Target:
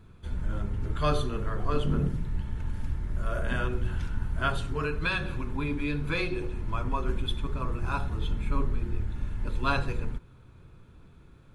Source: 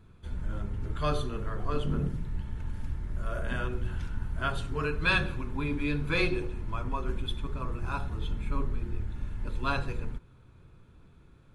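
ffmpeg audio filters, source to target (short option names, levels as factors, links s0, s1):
-filter_complex "[0:a]asettb=1/sr,asplit=3[s0][s1][s2];[s0]atrim=end=4.564[s3];[s1]atrim=start=4.56:end=6.65,asetpts=PTS-STARTPTS,afade=t=in:d=0.004:c=qsin,afade=t=out:st=2.086:d=0.004:c=qsin,acompressor=threshold=0.0398:ratio=6[s4];[s2]atrim=start=6.646[s5];[s3][s4]acrossfade=d=0.004:c1=hsin:c2=qsin[s6];[s6][s5]acrossfade=d=0.004:c1=qsin:c2=hsin,volume=1.41"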